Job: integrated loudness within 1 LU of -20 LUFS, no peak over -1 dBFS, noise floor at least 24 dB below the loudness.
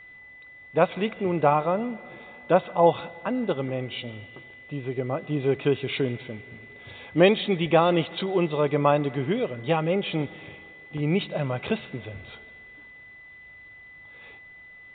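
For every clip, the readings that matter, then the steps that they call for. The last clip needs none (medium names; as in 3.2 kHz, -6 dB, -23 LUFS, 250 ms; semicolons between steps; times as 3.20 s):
steady tone 2 kHz; tone level -45 dBFS; loudness -25.0 LUFS; peak level -4.0 dBFS; loudness target -20.0 LUFS
-> band-stop 2 kHz, Q 30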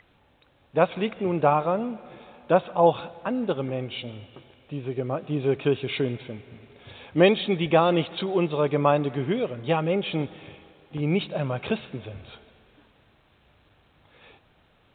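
steady tone not found; loudness -25.0 LUFS; peak level -4.5 dBFS; loudness target -20.0 LUFS
-> trim +5 dB; peak limiter -1 dBFS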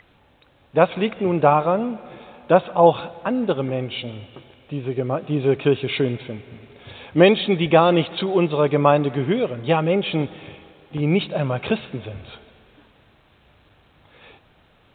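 loudness -20.5 LUFS; peak level -1.0 dBFS; noise floor -57 dBFS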